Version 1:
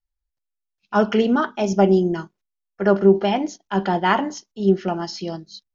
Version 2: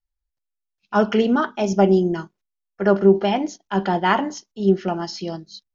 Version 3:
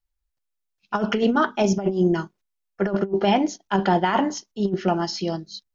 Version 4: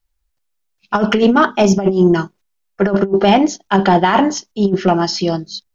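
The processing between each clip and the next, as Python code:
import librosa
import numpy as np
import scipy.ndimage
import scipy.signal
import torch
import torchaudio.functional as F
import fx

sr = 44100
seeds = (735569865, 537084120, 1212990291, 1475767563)

y1 = x
y2 = fx.over_compress(y1, sr, threshold_db=-19.0, ratio=-0.5)
y3 = 10.0 ** (-9.5 / 20.0) * np.tanh(y2 / 10.0 ** (-9.5 / 20.0))
y3 = y3 * librosa.db_to_amplitude(9.0)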